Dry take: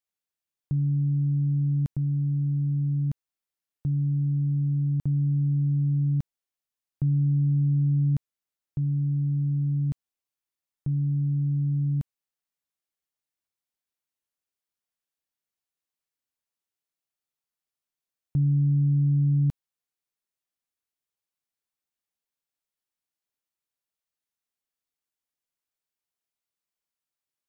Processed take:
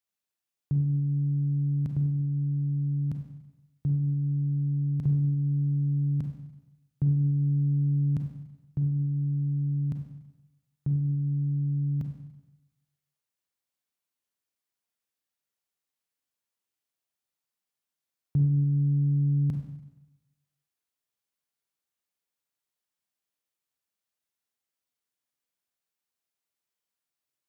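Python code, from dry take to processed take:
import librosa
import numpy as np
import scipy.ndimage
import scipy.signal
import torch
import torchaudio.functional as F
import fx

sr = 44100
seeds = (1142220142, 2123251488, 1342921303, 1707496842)

y = scipy.signal.sosfilt(scipy.signal.butter(2, 54.0, 'highpass', fs=sr, output='sos'), x)
y = fx.rev_schroeder(y, sr, rt60_s=1.0, comb_ms=32, drr_db=4.0)
y = fx.doppler_dist(y, sr, depth_ms=0.21)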